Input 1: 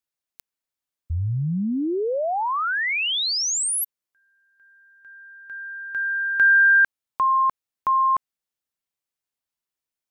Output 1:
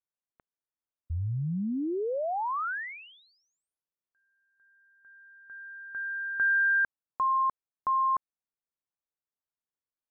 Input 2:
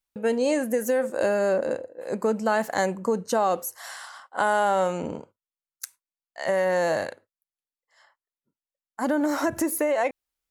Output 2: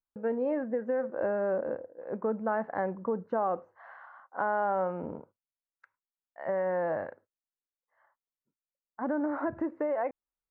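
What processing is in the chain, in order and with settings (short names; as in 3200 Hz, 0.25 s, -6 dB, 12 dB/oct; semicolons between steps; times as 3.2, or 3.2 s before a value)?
LPF 1600 Hz 24 dB/oct; gain -6.5 dB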